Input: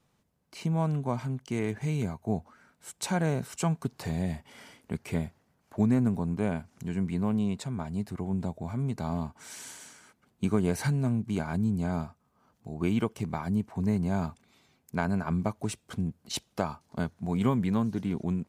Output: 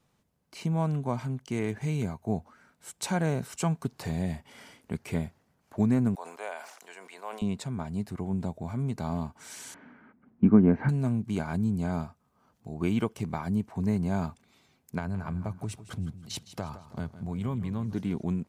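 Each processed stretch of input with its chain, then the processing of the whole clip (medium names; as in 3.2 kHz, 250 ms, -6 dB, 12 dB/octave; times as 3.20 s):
6.15–7.42 s: high-pass 580 Hz 24 dB/octave + decay stretcher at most 69 dB/s
9.74–10.89 s: low-pass 2 kHz 24 dB/octave + peaking EQ 240 Hz +13 dB
14.98–17.93 s: peaking EQ 99 Hz +10 dB 0.99 oct + compression 2:1, threshold -35 dBFS + feedback delay 161 ms, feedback 41%, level -14 dB
whole clip: none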